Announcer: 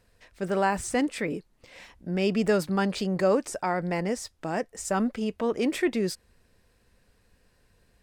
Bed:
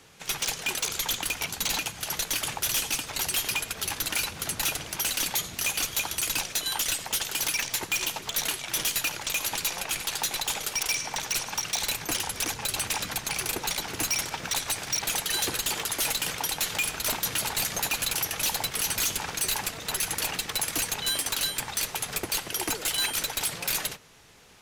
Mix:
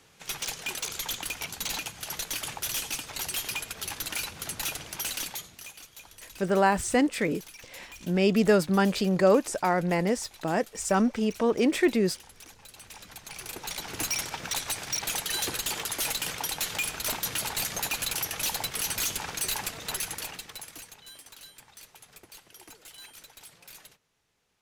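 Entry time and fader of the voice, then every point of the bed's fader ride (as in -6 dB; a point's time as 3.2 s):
6.00 s, +2.5 dB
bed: 5.16 s -4.5 dB
5.82 s -20 dB
12.74 s -20 dB
13.98 s -2.5 dB
19.92 s -2.5 dB
21.04 s -20.5 dB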